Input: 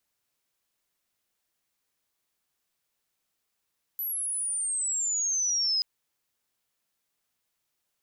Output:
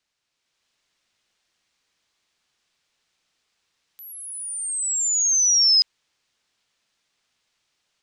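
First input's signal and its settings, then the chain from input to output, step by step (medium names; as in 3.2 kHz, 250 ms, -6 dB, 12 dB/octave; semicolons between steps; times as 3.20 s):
sweep logarithmic 12 kHz -> 5 kHz -29 dBFS -> -23 dBFS 1.83 s
treble shelf 2.2 kHz +12 dB; level rider gain up to 6.5 dB; distance through air 130 m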